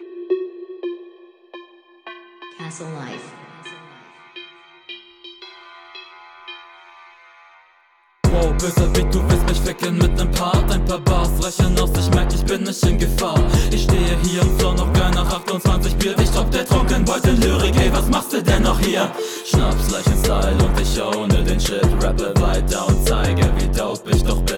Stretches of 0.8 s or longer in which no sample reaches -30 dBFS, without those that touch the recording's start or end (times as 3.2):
6.57–8.24